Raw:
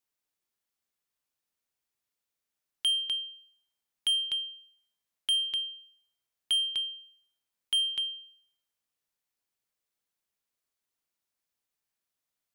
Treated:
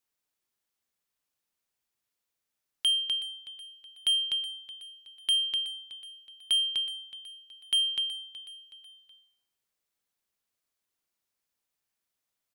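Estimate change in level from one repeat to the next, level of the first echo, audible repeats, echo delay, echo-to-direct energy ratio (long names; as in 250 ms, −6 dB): −6.5 dB, −15.0 dB, 3, 372 ms, −14.0 dB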